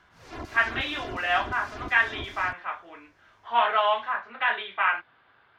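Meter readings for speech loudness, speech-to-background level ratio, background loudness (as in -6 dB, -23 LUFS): -26.0 LUFS, 15.0 dB, -41.0 LUFS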